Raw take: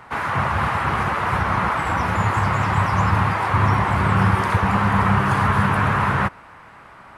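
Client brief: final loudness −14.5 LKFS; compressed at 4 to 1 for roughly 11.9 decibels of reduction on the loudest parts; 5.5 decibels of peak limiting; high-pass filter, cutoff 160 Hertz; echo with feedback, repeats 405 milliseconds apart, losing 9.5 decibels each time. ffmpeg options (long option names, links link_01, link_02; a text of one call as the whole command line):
ffmpeg -i in.wav -af "highpass=160,acompressor=threshold=-31dB:ratio=4,alimiter=level_in=0.5dB:limit=-24dB:level=0:latency=1,volume=-0.5dB,aecho=1:1:405|810|1215|1620:0.335|0.111|0.0365|0.012,volume=19dB" out.wav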